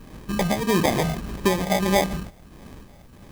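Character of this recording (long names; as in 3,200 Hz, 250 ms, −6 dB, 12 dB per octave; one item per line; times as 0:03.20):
phaser sweep stages 6, 1.6 Hz, lowest notch 370–1,700 Hz
aliases and images of a low sample rate 1,400 Hz, jitter 0%
tremolo triangle 1.2 Hz, depth 50%
a quantiser's noise floor 12 bits, dither triangular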